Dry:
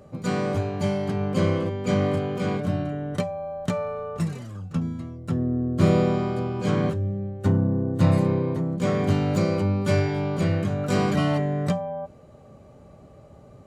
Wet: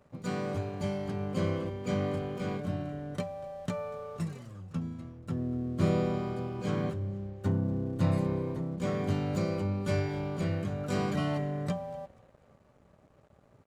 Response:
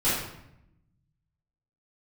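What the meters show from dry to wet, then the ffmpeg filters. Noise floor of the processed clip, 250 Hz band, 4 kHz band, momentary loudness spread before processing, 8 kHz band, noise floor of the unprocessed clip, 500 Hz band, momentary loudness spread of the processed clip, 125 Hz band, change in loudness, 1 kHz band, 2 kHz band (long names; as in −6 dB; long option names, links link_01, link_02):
−63 dBFS, −8.0 dB, −8.0 dB, 8 LU, −8.0 dB, −49 dBFS, −8.5 dB, 8 LU, −8.0 dB, −8.0 dB, −8.0 dB, −8.0 dB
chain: -filter_complex "[0:a]asplit=4[link_01][link_02][link_03][link_04];[link_02]adelay=241,afreqshift=-33,volume=-21dB[link_05];[link_03]adelay=482,afreqshift=-66,volume=-28.1dB[link_06];[link_04]adelay=723,afreqshift=-99,volume=-35.3dB[link_07];[link_01][link_05][link_06][link_07]amix=inputs=4:normalize=0,aeval=exprs='sgn(val(0))*max(abs(val(0))-0.00266,0)':channel_layout=same,volume=-8dB"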